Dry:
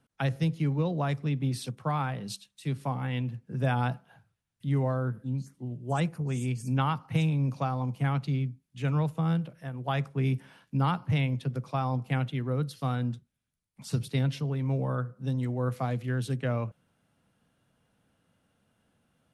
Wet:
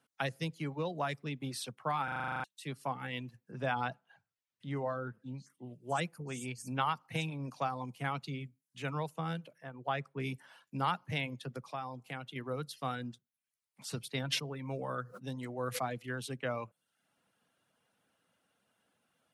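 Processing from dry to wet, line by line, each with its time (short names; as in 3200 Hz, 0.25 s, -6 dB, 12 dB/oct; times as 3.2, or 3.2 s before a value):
2.04 stutter in place 0.04 s, 10 plays
3.51–5.5 air absorption 80 m
9.58–10.2 LPF 2100 Hz 6 dB/oct
11.72–12.36 compressor 1.5:1, threshold -40 dBFS
14.25–15.98 sustainer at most 71 dB/s
whole clip: HPF 570 Hz 6 dB/oct; reverb removal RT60 0.52 s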